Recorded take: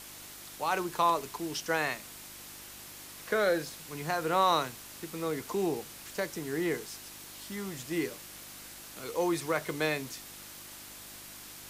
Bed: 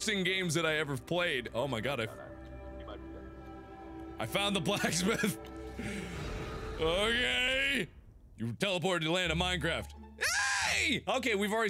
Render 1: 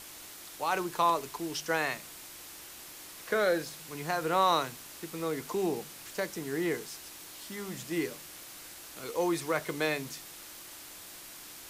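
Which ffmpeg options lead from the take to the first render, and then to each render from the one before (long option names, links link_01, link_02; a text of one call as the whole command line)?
ffmpeg -i in.wav -af "bandreject=frequency=50:width_type=h:width=4,bandreject=frequency=100:width_type=h:width=4,bandreject=frequency=150:width_type=h:width=4,bandreject=frequency=200:width_type=h:width=4,bandreject=frequency=250:width_type=h:width=4" out.wav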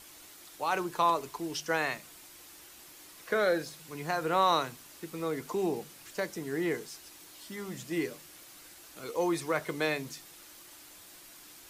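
ffmpeg -i in.wav -af "afftdn=noise_reduction=6:noise_floor=-48" out.wav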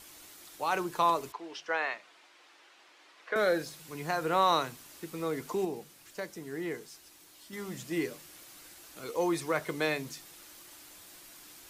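ffmpeg -i in.wav -filter_complex "[0:a]asettb=1/sr,asplit=3[link_01][link_02][link_03];[link_01]atrim=end=1.324[link_04];[link_02]atrim=start=1.32:end=3.36,asetpts=PTS-STARTPTS,afade=type=in:duration=0.004:curve=qsin,afade=type=out:start_time=2.036:duration=0.004:curve=qsin,highpass=520,lowpass=3200[link_05];[link_03]atrim=start=3.356[link_06];[link_04][link_05]acrossfade=duration=0.004:curve1=hsin:curve2=qsin[link_07];[link_07][link_06]acrossfade=duration=0.004:curve1=qsin:curve2=hsin,asplit=3[link_08][link_09][link_10];[link_08]atrim=end=5.652[link_11];[link_09]atrim=start=5.648:end=7.532,asetpts=PTS-STARTPTS,volume=-5dB[link_12];[link_10]atrim=start=7.528[link_13];[link_11][link_12]acrossfade=duration=0.004:curve1=hsin:curve2=hsin[link_14];[link_14][link_13]acrossfade=duration=0.004:curve1=hsin:curve2=hsin" out.wav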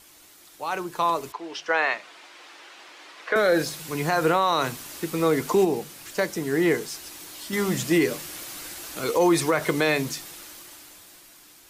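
ffmpeg -i in.wav -af "dynaudnorm=framelen=240:gausssize=13:maxgain=16dB,alimiter=limit=-11.5dB:level=0:latency=1:release=75" out.wav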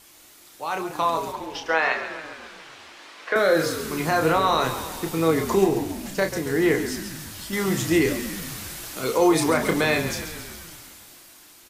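ffmpeg -i in.wav -filter_complex "[0:a]asplit=2[link_01][link_02];[link_02]adelay=31,volume=-6.5dB[link_03];[link_01][link_03]amix=inputs=2:normalize=0,asplit=2[link_04][link_05];[link_05]asplit=8[link_06][link_07][link_08][link_09][link_10][link_11][link_12][link_13];[link_06]adelay=137,afreqshift=-50,volume=-10.5dB[link_14];[link_07]adelay=274,afreqshift=-100,volume=-14.5dB[link_15];[link_08]adelay=411,afreqshift=-150,volume=-18.5dB[link_16];[link_09]adelay=548,afreqshift=-200,volume=-22.5dB[link_17];[link_10]adelay=685,afreqshift=-250,volume=-26.6dB[link_18];[link_11]adelay=822,afreqshift=-300,volume=-30.6dB[link_19];[link_12]adelay=959,afreqshift=-350,volume=-34.6dB[link_20];[link_13]adelay=1096,afreqshift=-400,volume=-38.6dB[link_21];[link_14][link_15][link_16][link_17][link_18][link_19][link_20][link_21]amix=inputs=8:normalize=0[link_22];[link_04][link_22]amix=inputs=2:normalize=0" out.wav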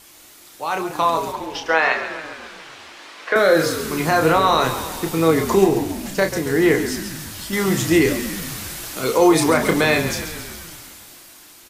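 ffmpeg -i in.wav -af "volume=4.5dB" out.wav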